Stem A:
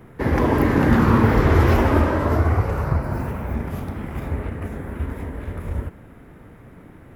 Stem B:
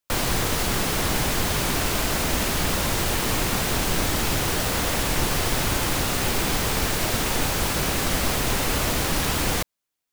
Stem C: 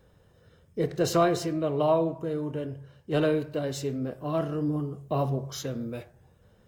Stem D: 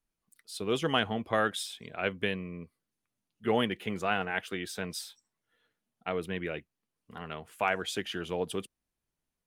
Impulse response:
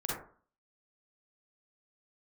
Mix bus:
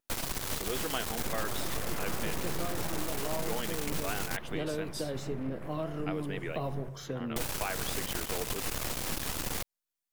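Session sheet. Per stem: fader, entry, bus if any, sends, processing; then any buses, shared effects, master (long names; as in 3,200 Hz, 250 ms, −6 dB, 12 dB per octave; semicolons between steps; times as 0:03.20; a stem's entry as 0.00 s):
−12.5 dB, 1.00 s, no send, full-wave rectification
−6.0 dB, 0.00 s, muted 0:04.37–0:07.36, no send, half-wave rectification; high-shelf EQ 6,100 Hz +5 dB
−6.5 dB, 1.45 s, no send, multiband upward and downward compressor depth 70%
−2.5 dB, 0.00 s, no send, high-pass filter 250 Hz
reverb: not used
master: pitch vibrato 4.6 Hz 45 cents; downward compressor 4 to 1, threshold −29 dBFS, peak gain reduction 9 dB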